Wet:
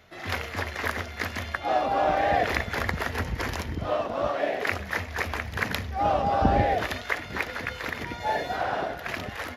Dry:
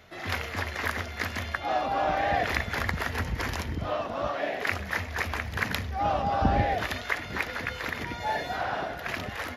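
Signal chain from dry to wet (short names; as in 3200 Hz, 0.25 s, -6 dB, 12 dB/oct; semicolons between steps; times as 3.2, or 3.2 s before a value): dynamic EQ 460 Hz, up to +5 dB, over -38 dBFS, Q 0.99; in parallel at -8.5 dB: crossover distortion -39.5 dBFS; on the sum: gain -2 dB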